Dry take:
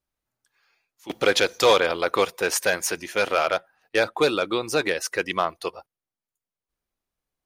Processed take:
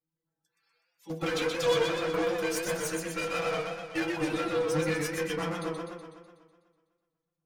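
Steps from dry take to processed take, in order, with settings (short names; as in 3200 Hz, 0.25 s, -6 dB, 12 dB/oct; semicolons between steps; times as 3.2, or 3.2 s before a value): bin magnitudes rounded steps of 30 dB; metallic resonator 160 Hz, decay 0.2 s, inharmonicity 0.002; in parallel at +3 dB: limiter -25 dBFS, peak gain reduction 9.5 dB; on the sum: de-hum 84.52 Hz, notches 30; one-sided clip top -33.5 dBFS; on a send at -2.5 dB: reverb RT60 0.15 s, pre-delay 3 ms; on the sum: warbling echo 0.124 s, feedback 60%, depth 110 cents, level -4 dB; gain -5.5 dB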